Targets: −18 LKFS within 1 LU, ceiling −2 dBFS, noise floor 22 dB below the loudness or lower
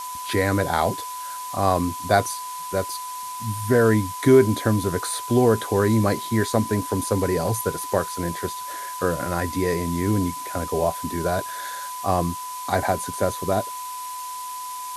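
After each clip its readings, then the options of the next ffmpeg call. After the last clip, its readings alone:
interfering tone 1,000 Hz; level of the tone −31 dBFS; background noise floor −33 dBFS; target noise floor −46 dBFS; integrated loudness −23.5 LKFS; sample peak −3.0 dBFS; target loudness −18.0 LKFS
→ -af "bandreject=frequency=1000:width=30"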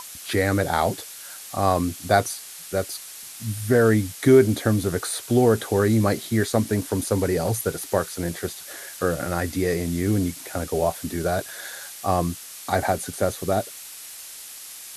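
interfering tone none found; background noise floor −40 dBFS; target noise floor −46 dBFS
→ -af "afftdn=noise_reduction=6:noise_floor=-40"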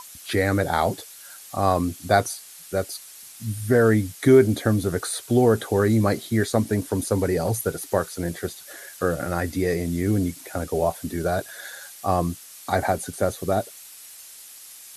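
background noise floor −44 dBFS; target noise floor −46 dBFS
→ -af "afftdn=noise_reduction=6:noise_floor=-44"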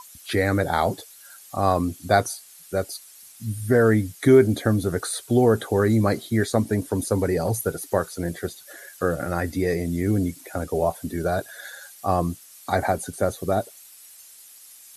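background noise floor −48 dBFS; integrated loudness −23.5 LKFS; sample peak −3.0 dBFS; target loudness −18.0 LKFS
→ -af "volume=5.5dB,alimiter=limit=-2dB:level=0:latency=1"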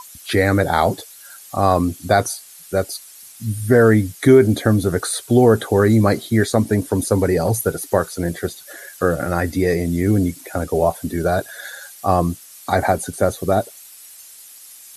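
integrated loudness −18.5 LKFS; sample peak −2.0 dBFS; background noise floor −42 dBFS

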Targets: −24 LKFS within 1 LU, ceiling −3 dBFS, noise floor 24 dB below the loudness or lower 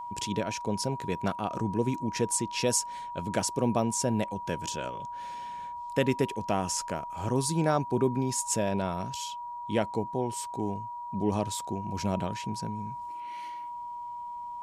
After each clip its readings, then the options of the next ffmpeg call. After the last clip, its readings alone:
interfering tone 960 Hz; level of the tone −36 dBFS; integrated loudness −31.0 LKFS; sample peak −13.0 dBFS; target loudness −24.0 LKFS
→ -af "bandreject=frequency=960:width=30"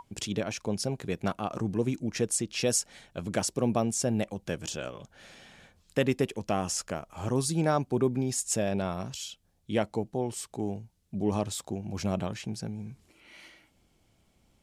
interfering tone none found; integrated loudness −31.0 LKFS; sample peak −13.5 dBFS; target loudness −24.0 LKFS
→ -af "volume=7dB"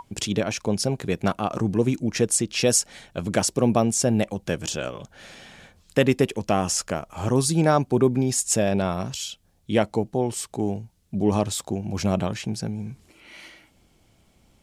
integrated loudness −24.0 LKFS; sample peak −6.5 dBFS; background noise floor −61 dBFS

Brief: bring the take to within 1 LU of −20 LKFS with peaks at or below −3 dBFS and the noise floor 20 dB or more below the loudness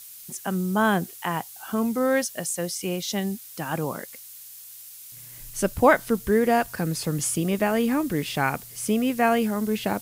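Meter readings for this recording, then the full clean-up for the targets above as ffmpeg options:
background noise floor −44 dBFS; target noise floor −45 dBFS; integrated loudness −25.0 LKFS; sample peak −4.5 dBFS; target loudness −20.0 LKFS
→ -af "afftdn=noise_reduction=6:noise_floor=-44"
-af "volume=5dB,alimiter=limit=-3dB:level=0:latency=1"

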